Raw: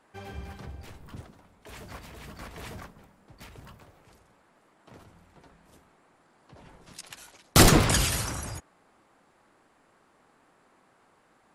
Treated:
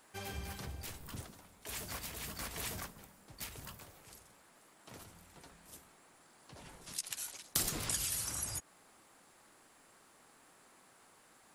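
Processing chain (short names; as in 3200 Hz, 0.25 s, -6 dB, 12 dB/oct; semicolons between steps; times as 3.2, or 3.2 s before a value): pre-emphasis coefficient 0.8; compressor 5:1, threshold -46 dBFS, peak gain reduction 24.5 dB; gain +10.5 dB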